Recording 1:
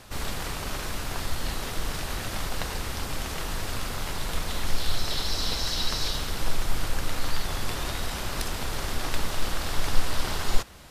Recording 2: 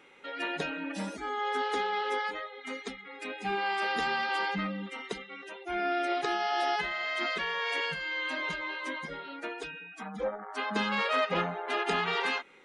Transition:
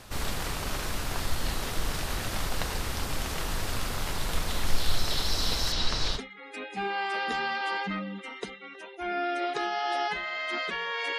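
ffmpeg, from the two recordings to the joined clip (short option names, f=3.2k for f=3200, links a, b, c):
-filter_complex "[0:a]asettb=1/sr,asplit=3[a][b][c];[a]atrim=end=5.724[d];[b]atrim=start=5.72:end=6.2,asetpts=PTS-STARTPTS,afade=t=in:d=0.004:c=qsin,afade=t=out:st=0.476:d=0.004:c=qsin,lowpass=5.9k[e];[c]atrim=start=6.196[f];[d][e]acrossfade=d=0.004:c1=hsin:c2=qsin[g];[g][f]acrossfade=d=0.004:c1=qsin:c2=hsin,apad=whole_dur=11.18,atrim=end=11.18,atrim=end=6.2,asetpts=PTS-STARTPTS[h];[1:a]atrim=start=2.82:end=7.86,asetpts=PTS-STARTPTS[i];[h][i]acrossfade=d=0.06:c1=tri:c2=tri"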